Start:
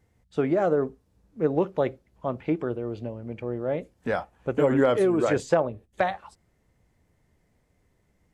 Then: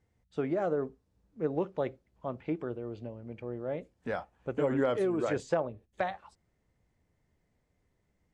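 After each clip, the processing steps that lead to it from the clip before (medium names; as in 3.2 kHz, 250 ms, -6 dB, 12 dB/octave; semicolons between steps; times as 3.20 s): low-pass 8.6 kHz 12 dB/octave; trim -7.5 dB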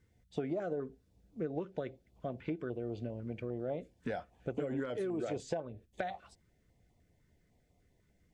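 compression 6:1, threshold -37 dBFS, peak gain reduction 13 dB; small resonant body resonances 710/1500/3500 Hz, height 7 dB; step-sequenced notch 10 Hz 730–1600 Hz; trim +4 dB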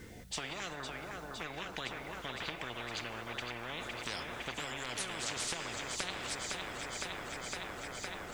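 thinning echo 510 ms, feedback 80%, high-pass 210 Hz, level -12 dB; on a send at -17 dB: reverberation RT60 4.5 s, pre-delay 18 ms; on the sum: spectrum-flattening compressor 10:1; trim +1 dB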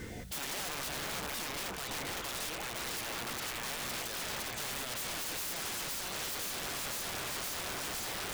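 in parallel at 0 dB: gain riding 0.5 s; on the sum: peak limiter -24 dBFS, peak gain reduction 9.5 dB; integer overflow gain 32.5 dB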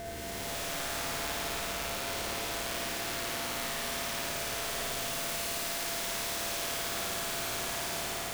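spectral blur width 626 ms; whistle 680 Hz -41 dBFS; flutter echo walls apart 9.4 m, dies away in 1.5 s; trim +1 dB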